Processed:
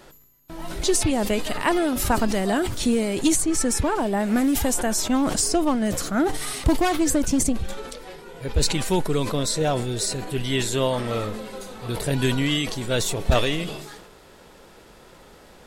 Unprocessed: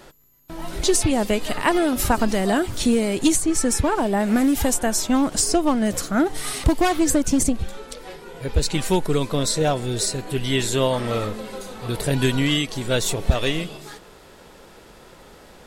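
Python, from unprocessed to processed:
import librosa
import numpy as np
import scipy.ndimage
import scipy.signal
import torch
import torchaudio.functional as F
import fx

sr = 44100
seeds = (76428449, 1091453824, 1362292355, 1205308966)

y = fx.sustainer(x, sr, db_per_s=51.0)
y = F.gain(torch.from_numpy(y), -2.5).numpy()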